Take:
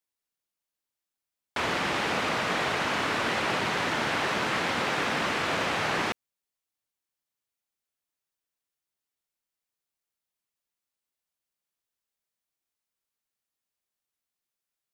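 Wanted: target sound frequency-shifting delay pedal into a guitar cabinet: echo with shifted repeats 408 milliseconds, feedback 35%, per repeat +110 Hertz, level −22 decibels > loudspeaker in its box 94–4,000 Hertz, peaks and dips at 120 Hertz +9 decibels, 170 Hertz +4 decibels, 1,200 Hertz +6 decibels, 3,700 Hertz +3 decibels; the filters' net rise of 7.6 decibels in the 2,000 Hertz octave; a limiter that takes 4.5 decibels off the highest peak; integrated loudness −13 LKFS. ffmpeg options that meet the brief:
ffmpeg -i in.wav -filter_complex "[0:a]equalizer=frequency=2000:width_type=o:gain=8.5,alimiter=limit=-15.5dB:level=0:latency=1,asplit=3[link_01][link_02][link_03];[link_02]adelay=408,afreqshift=110,volume=-22dB[link_04];[link_03]adelay=816,afreqshift=220,volume=-31.1dB[link_05];[link_01][link_04][link_05]amix=inputs=3:normalize=0,highpass=94,equalizer=frequency=120:width_type=q:width=4:gain=9,equalizer=frequency=170:width_type=q:width=4:gain=4,equalizer=frequency=1200:width_type=q:width=4:gain=6,equalizer=frequency=3700:width_type=q:width=4:gain=3,lowpass=frequency=4000:width=0.5412,lowpass=frequency=4000:width=1.3066,volume=10dB" out.wav

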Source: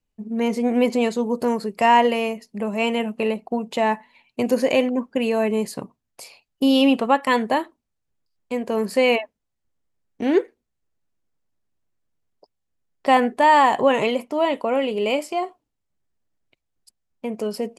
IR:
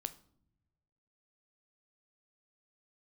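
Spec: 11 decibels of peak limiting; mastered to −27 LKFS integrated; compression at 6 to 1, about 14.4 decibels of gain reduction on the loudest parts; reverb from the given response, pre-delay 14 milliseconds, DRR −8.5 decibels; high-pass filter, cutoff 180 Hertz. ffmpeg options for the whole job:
-filter_complex "[0:a]highpass=180,acompressor=threshold=-27dB:ratio=6,alimiter=level_in=0.5dB:limit=-24dB:level=0:latency=1,volume=-0.5dB,asplit=2[link_01][link_02];[1:a]atrim=start_sample=2205,adelay=14[link_03];[link_02][link_03]afir=irnorm=-1:irlink=0,volume=10.5dB[link_04];[link_01][link_04]amix=inputs=2:normalize=0,volume=-1.5dB"

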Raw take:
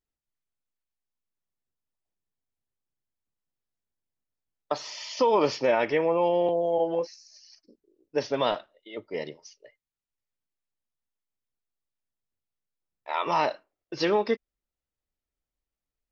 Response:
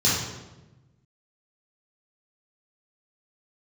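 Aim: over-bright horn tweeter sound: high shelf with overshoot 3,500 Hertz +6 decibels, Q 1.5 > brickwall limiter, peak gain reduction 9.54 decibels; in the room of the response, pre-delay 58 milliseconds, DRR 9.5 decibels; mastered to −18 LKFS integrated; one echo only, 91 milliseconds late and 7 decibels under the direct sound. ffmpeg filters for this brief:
-filter_complex "[0:a]aecho=1:1:91:0.447,asplit=2[link_01][link_02];[1:a]atrim=start_sample=2205,adelay=58[link_03];[link_02][link_03]afir=irnorm=-1:irlink=0,volume=-25dB[link_04];[link_01][link_04]amix=inputs=2:normalize=0,highshelf=frequency=3500:width_type=q:width=1.5:gain=6,volume=12dB,alimiter=limit=-7.5dB:level=0:latency=1"

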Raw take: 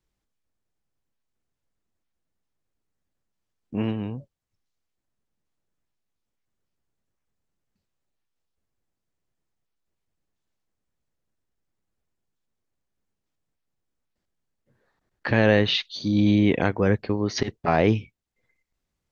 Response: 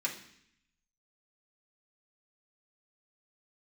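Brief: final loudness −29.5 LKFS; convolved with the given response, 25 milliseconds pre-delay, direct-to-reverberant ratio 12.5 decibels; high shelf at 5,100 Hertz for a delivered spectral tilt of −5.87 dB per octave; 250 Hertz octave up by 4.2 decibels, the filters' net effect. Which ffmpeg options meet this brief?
-filter_complex "[0:a]equalizer=frequency=250:width_type=o:gain=5.5,highshelf=frequency=5100:gain=-6,asplit=2[link_01][link_02];[1:a]atrim=start_sample=2205,adelay=25[link_03];[link_02][link_03]afir=irnorm=-1:irlink=0,volume=-16.5dB[link_04];[link_01][link_04]amix=inputs=2:normalize=0,volume=-9.5dB"

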